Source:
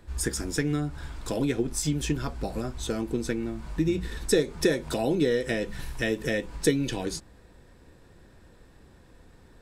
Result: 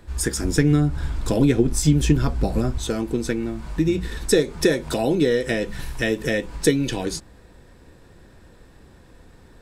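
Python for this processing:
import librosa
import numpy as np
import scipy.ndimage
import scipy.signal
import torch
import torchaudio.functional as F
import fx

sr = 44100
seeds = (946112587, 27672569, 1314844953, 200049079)

y = fx.low_shelf(x, sr, hz=310.0, db=8.0, at=(0.42, 2.78))
y = F.gain(torch.from_numpy(y), 5.0).numpy()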